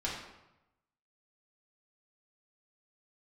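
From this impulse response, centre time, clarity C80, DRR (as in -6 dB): 50 ms, 5.5 dB, -6.0 dB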